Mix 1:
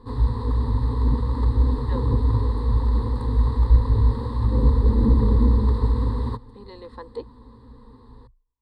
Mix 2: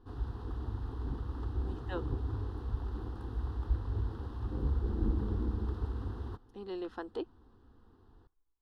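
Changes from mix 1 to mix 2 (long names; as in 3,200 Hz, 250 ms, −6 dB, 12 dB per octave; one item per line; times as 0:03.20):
background −11.5 dB
master: remove EQ curve with evenly spaced ripples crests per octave 0.97, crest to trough 17 dB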